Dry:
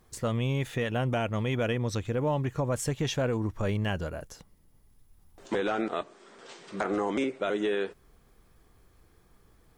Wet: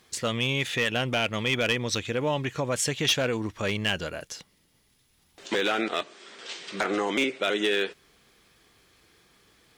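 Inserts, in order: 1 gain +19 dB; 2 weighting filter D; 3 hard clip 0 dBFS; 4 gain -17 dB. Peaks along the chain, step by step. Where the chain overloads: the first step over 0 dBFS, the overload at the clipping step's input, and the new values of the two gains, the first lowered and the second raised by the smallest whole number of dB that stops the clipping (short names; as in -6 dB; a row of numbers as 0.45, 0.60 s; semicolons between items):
+3.0, +8.5, 0.0, -17.0 dBFS; step 1, 8.5 dB; step 1 +10 dB, step 4 -8 dB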